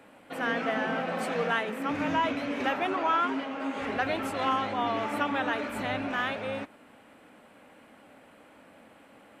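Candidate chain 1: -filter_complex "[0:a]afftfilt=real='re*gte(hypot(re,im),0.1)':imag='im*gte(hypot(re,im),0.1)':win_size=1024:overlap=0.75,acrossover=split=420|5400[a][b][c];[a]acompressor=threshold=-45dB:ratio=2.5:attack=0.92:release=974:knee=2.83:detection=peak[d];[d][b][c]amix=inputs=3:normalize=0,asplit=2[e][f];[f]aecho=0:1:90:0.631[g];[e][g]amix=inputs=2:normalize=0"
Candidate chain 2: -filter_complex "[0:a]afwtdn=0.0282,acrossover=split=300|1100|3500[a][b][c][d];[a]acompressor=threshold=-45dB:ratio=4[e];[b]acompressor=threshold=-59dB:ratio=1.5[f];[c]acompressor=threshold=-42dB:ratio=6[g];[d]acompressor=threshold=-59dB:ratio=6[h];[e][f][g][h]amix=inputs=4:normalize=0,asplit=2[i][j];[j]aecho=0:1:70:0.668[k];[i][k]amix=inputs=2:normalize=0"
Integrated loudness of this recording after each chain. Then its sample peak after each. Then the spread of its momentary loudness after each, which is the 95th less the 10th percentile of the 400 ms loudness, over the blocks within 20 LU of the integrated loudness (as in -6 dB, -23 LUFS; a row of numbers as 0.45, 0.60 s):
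-31.0, -37.5 LUFS; -15.0, -22.5 dBFS; 9, 3 LU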